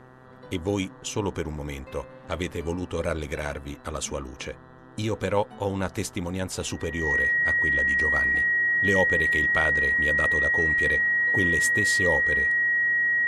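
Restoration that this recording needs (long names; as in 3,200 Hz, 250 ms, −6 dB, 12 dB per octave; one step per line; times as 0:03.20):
hum removal 128.2 Hz, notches 15
notch filter 1,900 Hz, Q 30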